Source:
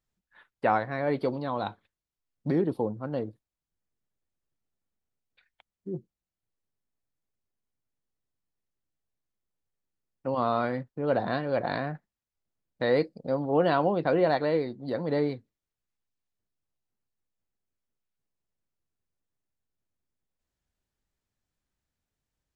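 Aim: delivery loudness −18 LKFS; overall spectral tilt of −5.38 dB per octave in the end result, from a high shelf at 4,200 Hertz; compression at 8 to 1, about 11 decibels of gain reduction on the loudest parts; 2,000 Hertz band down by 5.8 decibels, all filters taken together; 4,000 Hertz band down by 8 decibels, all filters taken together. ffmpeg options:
ffmpeg -i in.wav -af "equalizer=frequency=2000:width_type=o:gain=-6,equalizer=frequency=4000:width_type=o:gain=-5,highshelf=frequency=4200:gain=-5,acompressor=threshold=-31dB:ratio=8,volume=19.5dB" out.wav

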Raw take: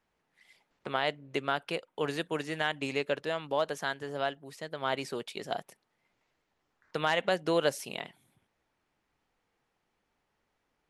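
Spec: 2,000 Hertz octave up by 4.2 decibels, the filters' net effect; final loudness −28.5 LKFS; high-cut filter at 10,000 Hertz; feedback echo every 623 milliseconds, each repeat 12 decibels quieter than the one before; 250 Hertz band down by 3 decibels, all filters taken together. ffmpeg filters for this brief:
ffmpeg -i in.wav -af "lowpass=10000,equalizer=frequency=250:width_type=o:gain=-4.5,equalizer=frequency=2000:width_type=o:gain=5.5,aecho=1:1:623|1246|1869:0.251|0.0628|0.0157,volume=3dB" out.wav

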